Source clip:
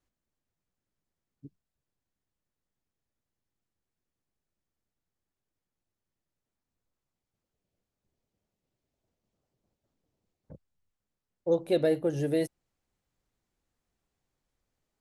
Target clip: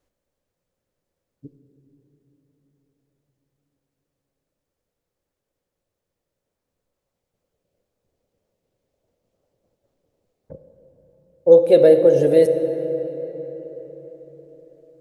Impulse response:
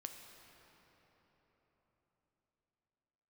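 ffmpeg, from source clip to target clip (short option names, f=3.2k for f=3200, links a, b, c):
-filter_complex "[0:a]asplit=2[a][b];[b]equalizer=f=520:w=1.8:g=15[c];[1:a]atrim=start_sample=2205[d];[c][d]afir=irnorm=-1:irlink=0,volume=7dB[e];[a][e]amix=inputs=2:normalize=0,volume=-1.5dB"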